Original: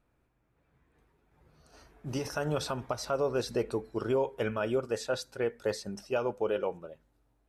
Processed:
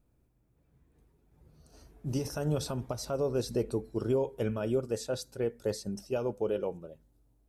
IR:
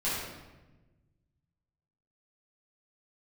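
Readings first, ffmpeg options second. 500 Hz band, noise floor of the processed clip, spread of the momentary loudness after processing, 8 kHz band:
-1.0 dB, -70 dBFS, 6 LU, +0.5 dB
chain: -af "equalizer=f=1600:w=0.38:g=-14,volume=1.78"

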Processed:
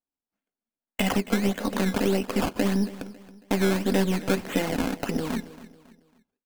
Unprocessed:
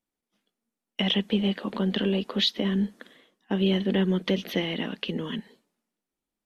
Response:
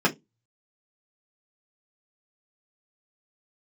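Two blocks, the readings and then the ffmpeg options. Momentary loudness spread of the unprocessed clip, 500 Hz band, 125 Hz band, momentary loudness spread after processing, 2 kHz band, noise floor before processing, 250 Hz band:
8 LU, +2.5 dB, 0.0 dB, 8 LU, +3.5 dB, under -85 dBFS, +1.0 dB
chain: -filter_complex "[0:a]agate=range=0.141:threshold=0.00355:ratio=16:detection=peak,equalizer=f=3500:t=o:w=0.61:g=-8,acompressor=threshold=0.0316:ratio=1.5,acrusher=samples=16:mix=1:aa=0.000001:lfo=1:lforange=16:lforate=1.7,aeval=exprs='0.168*(cos(1*acos(clip(val(0)/0.168,-1,1)))-cos(1*PI/2))+0.0133*(cos(6*acos(clip(val(0)/0.168,-1,1)))-cos(6*PI/2))':c=same,aecho=1:1:275|550|825:0.141|0.0551|0.0215,asplit=2[s0][s1];[1:a]atrim=start_sample=2205,asetrate=70560,aresample=44100[s2];[s1][s2]afir=irnorm=-1:irlink=0,volume=0.0794[s3];[s0][s3]amix=inputs=2:normalize=0,volume=1.68"

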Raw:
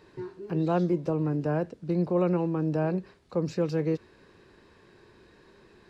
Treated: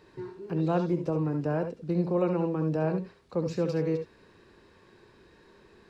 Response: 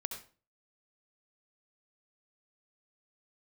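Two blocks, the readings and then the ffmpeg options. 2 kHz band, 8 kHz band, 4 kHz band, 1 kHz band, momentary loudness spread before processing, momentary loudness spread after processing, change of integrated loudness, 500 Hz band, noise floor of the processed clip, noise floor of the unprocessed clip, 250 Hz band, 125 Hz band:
-1.0 dB, no reading, -0.5 dB, -1.0 dB, 9 LU, 8 LU, -1.0 dB, -0.5 dB, -59 dBFS, -58 dBFS, -1.5 dB, -1.0 dB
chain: -filter_complex "[1:a]atrim=start_sample=2205,afade=t=out:st=0.13:d=0.01,atrim=end_sample=6174[s0];[0:a][s0]afir=irnorm=-1:irlink=0"

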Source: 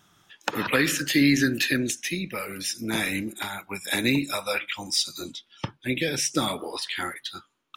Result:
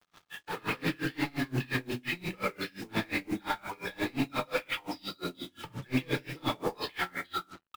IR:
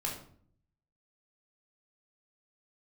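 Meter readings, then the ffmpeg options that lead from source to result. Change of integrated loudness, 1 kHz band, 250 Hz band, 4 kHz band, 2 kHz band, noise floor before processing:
-8.5 dB, -2.5 dB, -8.5 dB, -10.5 dB, -7.5 dB, -68 dBFS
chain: -filter_complex "[0:a]acrossover=split=2700[s0][s1];[s1]acompressor=threshold=0.0141:ratio=4:attack=1:release=60[s2];[s0][s2]amix=inputs=2:normalize=0,highpass=f=48:p=1,bandreject=f=50:t=h:w=6,bandreject=f=100:t=h:w=6,bandreject=f=150:t=h:w=6,bandreject=f=200:t=h:w=6,bandreject=f=250:t=h:w=6,bandreject=f=300:t=h:w=6,bandreject=f=350:t=h:w=6,bandreject=f=400:t=h:w=6,acrossover=split=240|3000[s3][s4][s5];[s4]acompressor=threshold=0.02:ratio=6[s6];[s3][s6][s5]amix=inputs=3:normalize=0,asplit=2[s7][s8];[s8]highpass=f=720:p=1,volume=5.01,asoftclip=type=tanh:threshold=0.168[s9];[s7][s9]amix=inputs=2:normalize=0,lowpass=f=1400:p=1,volume=0.501,aresample=11025,asoftclip=type=hard:threshold=0.0299,aresample=44100,aecho=1:1:76|152|228:0.0891|0.0357|0.0143,acrusher=bits=3:mode=log:mix=0:aa=0.000001[s10];[1:a]atrim=start_sample=2205[s11];[s10][s11]afir=irnorm=-1:irlink=0,acrusher=bits=7:mix=0:aa=0.5,aeval=exprs='val(0)*pow(10,-29*(0.5-0.5*cos(2*PI*5.7*n/s))/20)':c=same,volume=1.5"

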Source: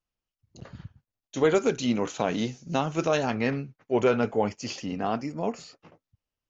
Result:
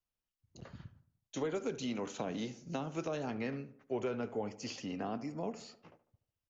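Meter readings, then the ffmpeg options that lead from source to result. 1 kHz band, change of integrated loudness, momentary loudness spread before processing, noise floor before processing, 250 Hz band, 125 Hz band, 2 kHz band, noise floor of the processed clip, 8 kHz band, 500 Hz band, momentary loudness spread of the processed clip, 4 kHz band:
-13.0 dB, -12.0 dB, 16 LU, under -85 dBFS, -10.5 dB, -11.0 dB, -13.5 dB, under -85 dBFS, no reading, -12.5 dB, 15 LU, -10.5 dB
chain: -filter_complex "[0:a]acrossover=split=210|450[s0][s1][s2];[s0]acompressor=threshold=0.00794:ratio=4[s3];[s1]acompressor=threshold=0.02:ratio=4[s4];[s2]acompressor=threshold=0.0158:ratio=4[s5];[s3][s4][s5]amix=inputs=3:normalize=0,asplit=2[s6][s7];[s7]adelay=74,lowpass=f=1800:p=1,volume=0.188,asplit=2[s8][s9];[s9]adelay=74,lowpass=f=1800:p=1,volume=0.53,asplit=2[s10][s11];[s11]adelay=74,lowpass=f=1800:p=1,volume=0.53,asplit=2[s12][s13];[s13]adelay=74,lowpass=f=1800:p=1,volume=0.53,asplit=2[s14][s15];[s15]adelay=74,lowpass=f=1800:p=1,volume=0.53[s16];[s8][s10][s12][s14][s16]amix=inputs=5:normalize=0[s17];[s6][s17]amix=inputs=2:normalize=0,volume=0.531"

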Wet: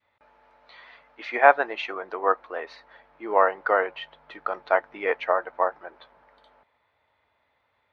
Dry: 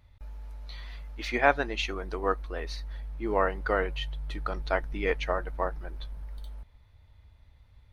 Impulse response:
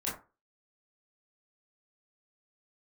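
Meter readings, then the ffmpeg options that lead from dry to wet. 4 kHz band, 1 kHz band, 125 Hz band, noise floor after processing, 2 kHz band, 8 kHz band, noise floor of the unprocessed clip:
-3.0 dB, +8.0 dB, under -20 dB, -72 dBFS, +5.0 dB, no reading, -59 dBFS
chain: -af "highpass=520,lowpass=2200,adynamicequalizer=threshold=0.00794:dfrequency=780:dqfactor=0.75:tfrequency=780:tqfactor=0.75:attack=5:release=100:ratio=0.375:range=2.5:mode=boostabove:tftype=bell,volume=1.68"

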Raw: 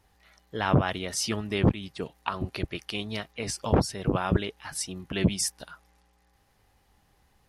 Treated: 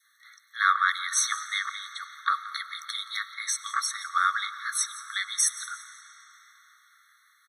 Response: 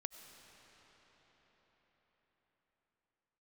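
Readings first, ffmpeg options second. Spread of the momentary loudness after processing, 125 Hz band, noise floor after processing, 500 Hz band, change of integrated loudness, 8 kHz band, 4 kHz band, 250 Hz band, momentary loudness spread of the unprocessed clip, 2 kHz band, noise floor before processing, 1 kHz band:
13 LU, under -40 dB, -64 dBFS, under -40 dB, +1.0 dB, +7.0 dB, +3.0 dB, under -40 dB, 10 LU, +8.0 dB, -66 dBFS, +5.5 dB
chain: -filter_complex "[0:a]asuperstop=centerf=670:order=4:qfactor=1.2,adynamicequalizer=threshold=0.00708:dfrequency=1200:dqfactor=2.3:tfrequency=1200:tqfactor=2.3:attack=5:release=100:ratio=0.375:range=2.5:mode=boostabove:tftype=bell,asplit=4[s0][s1][s2][s3];[s1]adelay=174,afreqshift=61,volume=0.126[s4];[s2]adelay=348,afreqshift=122,volume=0.0389[s5];[s3]adelay=522,afreqshift=183,volume=0.0122[s6];[s0][s4][s5][s6]amix=inputs=4:normalize=0,asplit=2[s7][s8];[1:a]atrim=start_sample=2205[s9];[s8][s9]afir=irnorm=-1:irlink=0,volume=1.33[s10];[s7][s10]amix=inputs=2:normalize=0,afftfilt=real='re*eq(mod(floor(b*sr/1024/1100),2),1)':imag='im*eq(mod(floor(b*sr/1024/1100),2),1)':win_size=1024:overlap=0.75,volume=1.41"

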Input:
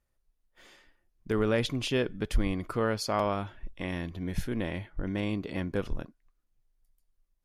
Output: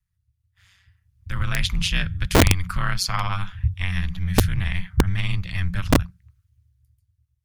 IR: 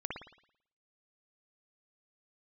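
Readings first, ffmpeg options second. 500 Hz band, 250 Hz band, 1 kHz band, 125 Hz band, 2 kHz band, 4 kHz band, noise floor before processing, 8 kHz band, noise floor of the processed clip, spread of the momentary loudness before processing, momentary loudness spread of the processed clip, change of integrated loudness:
+1.0 dB, +5.0 dB, +7.0 dB, +12.5 dB, +10.5 dB, +11.5 dB, -76 dBFS, +14.5 dB, -74 dBFS, 9 LU, 8 LU, +8.0 dB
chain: -filter_complex "[0:a]aeval=exprs='val(0)*sin(2*PI*94*n/s)':c=same,acrossover=split=120|1100|2000[s0][s1][s2][s3];[s0]acontrast=81[s4];[s1]asuperpass=centerf=170:order=12:qfactor=7[s5];[s4][s5][s2][s3]amix=inputs=4:normalize=0,aeval=exprs='(mod(11.2*val(0)+1,2)-1)/11.2':c=same,dynaudnorm=f=200:g=13:m=4.73"

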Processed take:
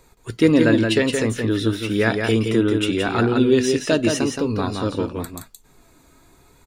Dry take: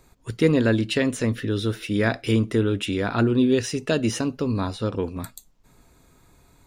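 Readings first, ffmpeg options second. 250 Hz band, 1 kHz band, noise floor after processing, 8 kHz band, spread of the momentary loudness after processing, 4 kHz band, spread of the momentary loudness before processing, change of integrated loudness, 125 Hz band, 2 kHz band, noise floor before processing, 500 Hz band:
+4.0 dB, +4.5 dB, -55 dBFS, +4.5 dB, 10 LU, +4.5 dB, 8 LU, +3.5 dB, +0.5 dB, +5.0 dB, -58 dBFS, +4.5 dB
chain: -filter_complex "[0:a]lowshelf=f=110:g=-4.5,flanger=delay=2:depth=1.5:regen=59:speed=0.91:shape=triangular,asplit=2[s0][s1];[s1]aecho=0:1:171:0.562[s2];[s0][s2]amix=inputs=2:normalize=0,volume=2.37"

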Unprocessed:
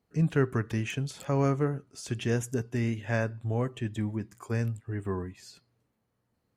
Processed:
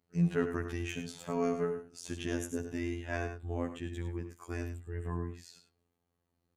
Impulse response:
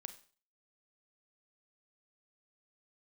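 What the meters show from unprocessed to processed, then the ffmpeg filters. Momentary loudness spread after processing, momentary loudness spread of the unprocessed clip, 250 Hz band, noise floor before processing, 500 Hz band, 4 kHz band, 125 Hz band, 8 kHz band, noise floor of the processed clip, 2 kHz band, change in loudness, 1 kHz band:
10 LU, 9 LU, -4.5 dB, -78 dBFS, -4.0 dB, -4.0 dB, -8.5 dB, -4.0 dB, -82 dBFS, -5.0 dB, -5.5 dB, -4.5 dB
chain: -af "afftfilt=real='hypot(re,im)*cos(PI*b)':imag='0':win_size=2048:overlap=0.75,aecho=1:1:69.97|102:0.251|0.316,volume=0.841"

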